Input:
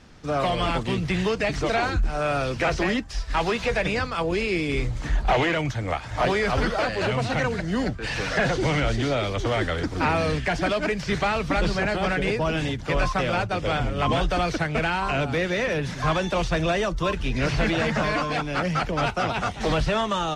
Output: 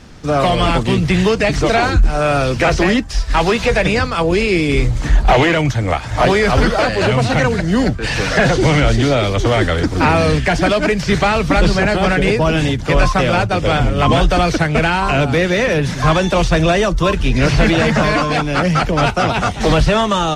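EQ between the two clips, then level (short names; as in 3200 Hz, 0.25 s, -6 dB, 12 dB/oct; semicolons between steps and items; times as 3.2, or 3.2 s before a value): low shelf 500 Hz +3.5 dB; high shelf 6600 Hz +6 dB; +8.0 dB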